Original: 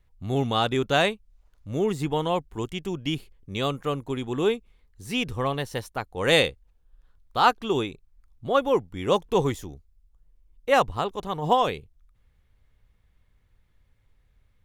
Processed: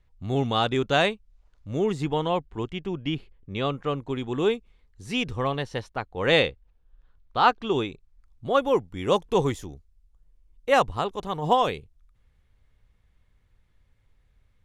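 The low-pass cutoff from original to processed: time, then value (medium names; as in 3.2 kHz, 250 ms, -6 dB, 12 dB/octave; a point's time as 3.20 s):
1.96 s 7 kHz
2.83 s 3.2 kHz
3.58 s 3.2 kHz
4.56 s 7.6 kHz
5.15 s 7.6 kHz
6.06 s 4 kHz
7.39 s 4 kHz
8.55 s 11 kHz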